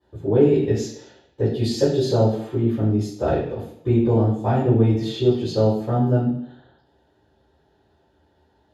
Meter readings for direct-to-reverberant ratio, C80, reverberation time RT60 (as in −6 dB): −15.5 dB, 7.5 dB, 0.70 s